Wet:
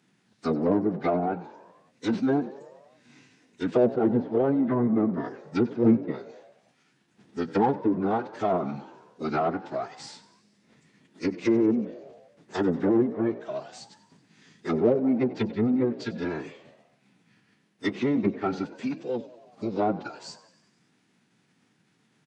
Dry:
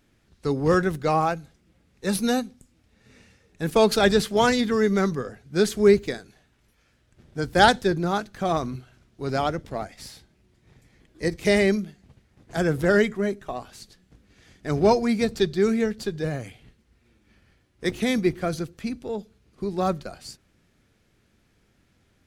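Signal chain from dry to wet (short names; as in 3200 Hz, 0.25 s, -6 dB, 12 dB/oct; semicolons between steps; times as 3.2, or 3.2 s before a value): treble ducked by the level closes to 580 Hz, closed at -17 dBFS; notch 1000 Hz, Q 26; formant-preserving pitch shift -10 st; in parallel at -6 dB: soft clip -23.5 dBFS, distortion -8 dB; on the sum: HPF 150 Hz 24 dB/oct; on a send: frequency-shifting echo 94 ms, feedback 64%, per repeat +57 Hz, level -18 dB; on the sum: gain -2 dB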